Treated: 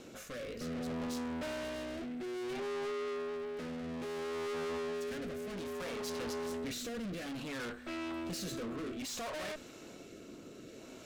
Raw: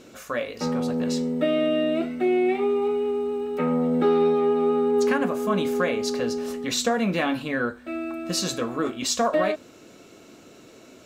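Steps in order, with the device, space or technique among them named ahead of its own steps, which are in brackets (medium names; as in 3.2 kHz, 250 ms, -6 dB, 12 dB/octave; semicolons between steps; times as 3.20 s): overdriven rotary cabinet (valve stage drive 39 dB, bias 0.6; rotary cabinet horn 0.6 Hz); trim +2.5 dB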